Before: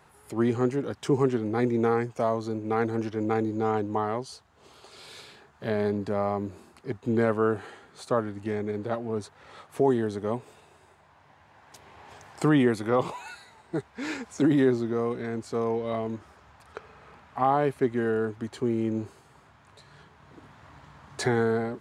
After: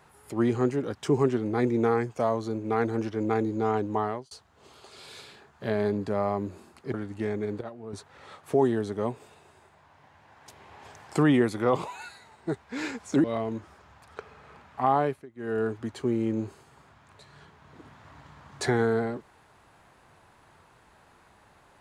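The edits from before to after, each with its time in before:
4.06–4.31 fade out
6.94–8.2 cut
8.87–9.19 gain -10 dB
14.5–15.82 cut
17.58–18.19 dip -24 dB, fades 0.26 s

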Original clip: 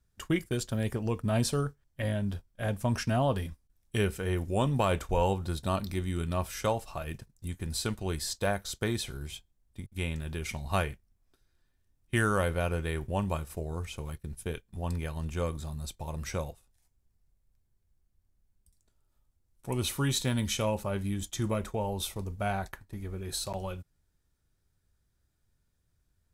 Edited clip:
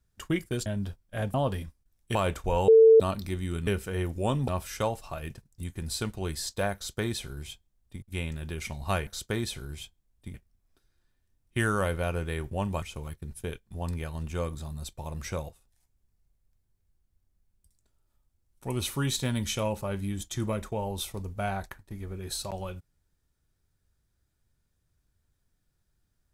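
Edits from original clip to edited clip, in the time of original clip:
0.66–2.12 cut
2.8–3.18 cut
3.99–4.8 move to 6.32
5.33–5.65 bleep 447 Hz -12 dBFS
8.59–9.86 copy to 10.91
13.39–13.84 cut

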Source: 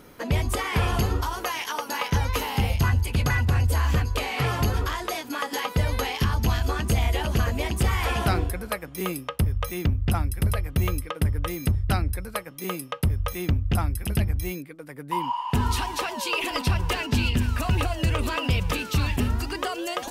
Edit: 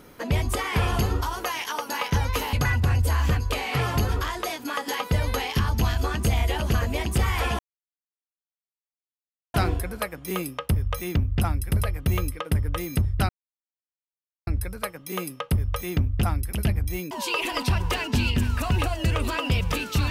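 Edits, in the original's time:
2.53–3.18 cut
8.24 insert silence 1.95 s
11.99 insert silence 1.18 s
14.63–16.1 cut

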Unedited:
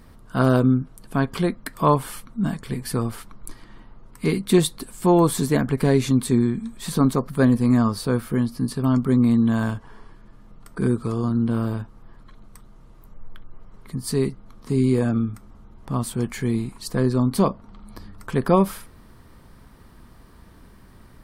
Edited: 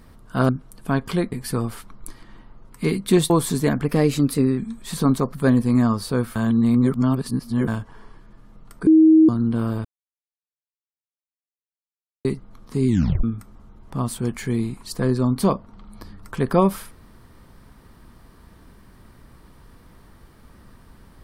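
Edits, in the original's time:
0.49–0.75 cut
1.58–2.73 cut
4.71–5.18 cut
5.73–6.53 speed 110%
8.31–9.63 reverse
10.82–11.24 bleep 317 Hz -8.5 dBFS
11.8–14.2 mute
14.83 tape stop 0.36 s

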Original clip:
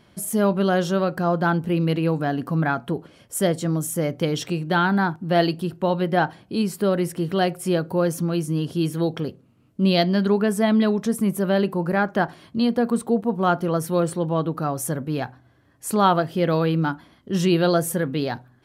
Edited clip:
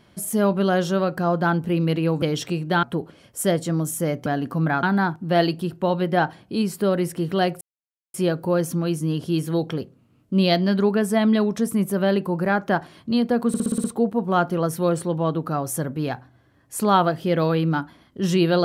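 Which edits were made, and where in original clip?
2.22–2.79 swap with 4.22–4.83
7.61 insert silence 0.53 s
12.95 stutter 0.06 s, 7 plays

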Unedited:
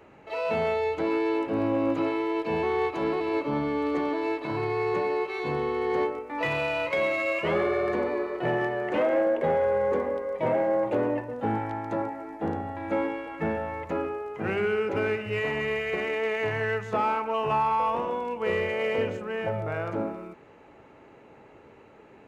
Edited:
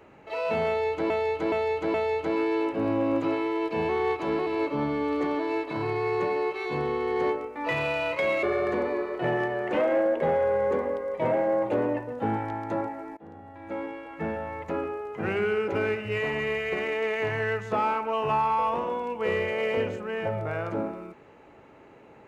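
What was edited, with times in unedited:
0.68–1.1 loop, 4 plays
7.17–7.64 cut
12.38–14.57 fade in equal-power, from -22.5 dB

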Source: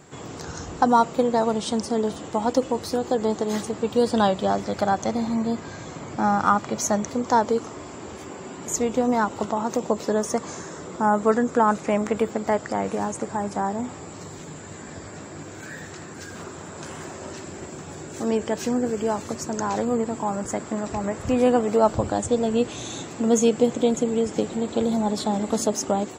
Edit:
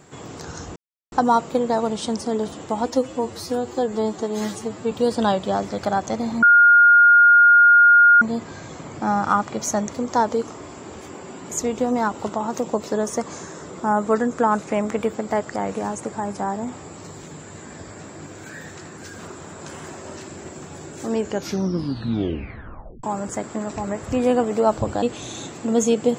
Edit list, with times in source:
0.76 insert silence 0.36 s
2.5–3.87 stretch 1.5×
5.38 add tone 1420 Hz -8.5 dBFS 1.79 s
18.38 tape stop 1.82 s
22.19–22.58 cut

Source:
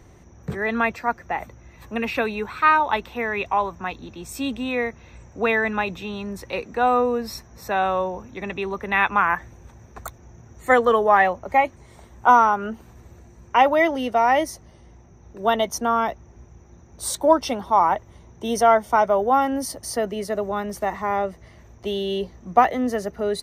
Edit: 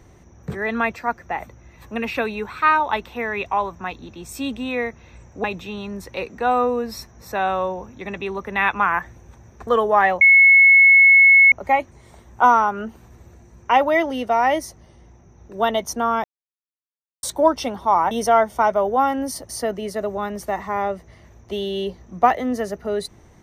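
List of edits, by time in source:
5.44–5.8 cut
10.03–10.83 cut
11.37 add tone 2190 Hz -7.5 dBFS 1.31 s
16.09–17.08 mute
17.96–18.45 cut

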